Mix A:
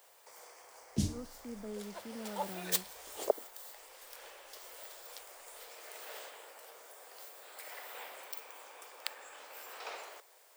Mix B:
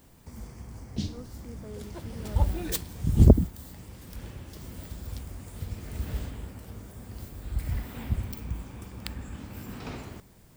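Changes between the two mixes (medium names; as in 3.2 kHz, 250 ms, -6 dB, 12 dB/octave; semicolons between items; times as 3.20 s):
first sound: add resonant low-pass 4.1 kHz, resonance Q 1.7; second sound: remove steep high-pass 490 Hz 36 dB/octave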